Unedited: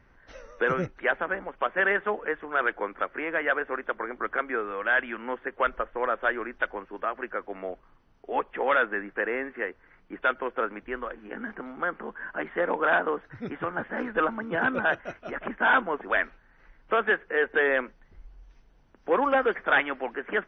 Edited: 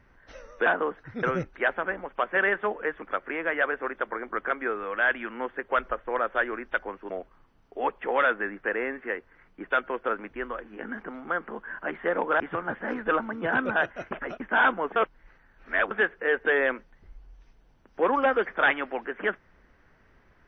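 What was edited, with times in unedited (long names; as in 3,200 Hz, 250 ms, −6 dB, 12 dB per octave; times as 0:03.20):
0:02.45–0:02.90: remove
0:06.98–0:07.62: remove
0:12.92–0:13.49: move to 0:00.66
0:15.20–0:15.49: reverse
0:16.05–0:17.00: reverse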